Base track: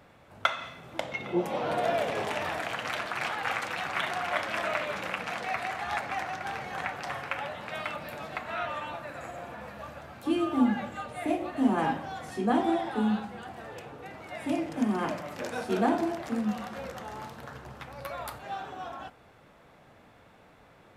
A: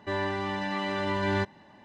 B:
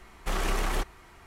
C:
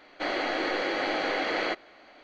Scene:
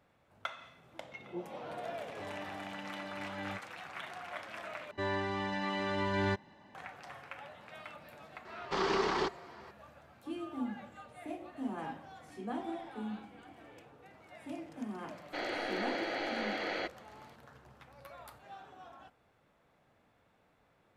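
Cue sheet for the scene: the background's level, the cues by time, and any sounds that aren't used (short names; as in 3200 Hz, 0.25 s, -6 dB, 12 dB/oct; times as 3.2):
base track -13.5 dB
2.13 add A -16 dB + comb 6.5 ms, depth 83%
4.91 replace with A -4.5 dB
8.45 add B -1.5 dB + speaker cabinet 150–5300 Hz, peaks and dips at 400 Hz +9 dB, 610 Hz -5 dB, 960 Hz +6 dB, 2500 Hz -4 dB, 4700 Hz +6 dB
12.09 add C -18 dB + vocal tract filter i
15.13 add C -8 dB + notch 1100 Hz, Q 8.1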